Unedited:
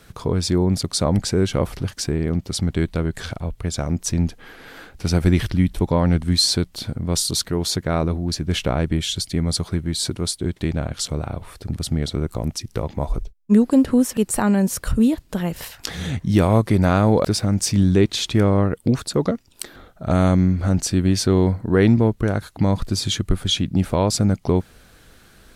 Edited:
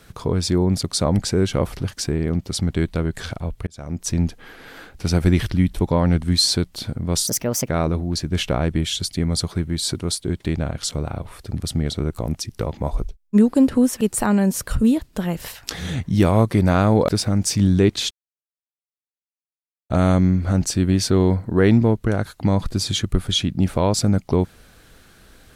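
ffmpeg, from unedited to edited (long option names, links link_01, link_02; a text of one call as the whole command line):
ffmpeg -i in.wav -filter_complex "[0:a]asplit=6[link_01][link_02][link_03][link_04][link_05][link_06];[link_01]atrim=end=3.67,asetpts=PTS-STARTPTS,afade=type=out:start_time=3.666:duration=0.004:curve=hsin[link_07];[link_02]atrim=start=3.67:end=7.274,asetpts=PTS-STARTPTS,afade=type=in:duration=0.47[link_08];[link_03]atrim=start=7.27:end=7.85,asetpts=PTS-STARTPTS,asetrate=61299,aresample=44100,atrim=end_sample=18401,asetpts=PTS-STARTPTS[link_09];[link_04]atrim=start=7.846:end=18.27,asetpts=PTS-STARTPTS,afade=type=out:start_time=10.42:duration=0.004:curve=hsin[link_10];[link_05]atrim=start=18.27:end=20.06,asetpts=PTS-STARTPTS,volume=0[link_11];[link_06]atrim=start=20.06,asetpts=PTS-STARTPTS,afade=type=in:duration=0.004:curve=hsin[link_12];[link_07][link_08]concat=n=2:v=0:a=1[link_13];[link_13][link_09]acrossfade=duration=0.004:curve1=hsin:curve2=hsin[link_14];[link_10][link_11][link_12]concat=n=3:v=0:a=1[link_15];[link_14][link_15]acrossfade=duration=0.004:curve1=hsin:curve2=hsin" out.wav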